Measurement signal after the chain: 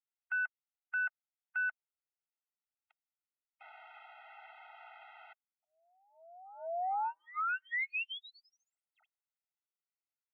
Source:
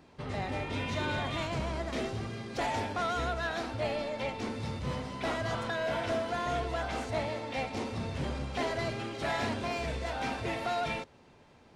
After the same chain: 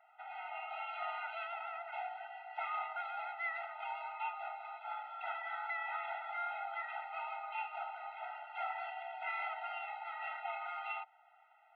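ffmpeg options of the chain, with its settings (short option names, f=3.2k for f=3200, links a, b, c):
-af "aeval=exprs='0.106*(cos(1*acos(clip(val(0)/0.106,-1,1)))-cos(1*PI/2))+0.00531*(cos(6*acos(clip(val(0)/0.106,-1,1)))-cos(6*PI/2))':c=same,highpass=f=340:t=q:w=0.5412,highpass=f=340:t=q:w=1.307,lowpass=f=2.5k:t=q:w=0.5176,lowpass=f=2.5k:t=q:w=0.7071,lowpass=f=2.5k:t=q:w=1.932,afreqshift=350,afftfilt=real='re*eq(mod(floor(b*sr/1024/310),2),0)':imag='im*eq(mod(floor(b*sr/1024/310),2),0)':win_size=1024:overlap=0.75,volume=-2dB"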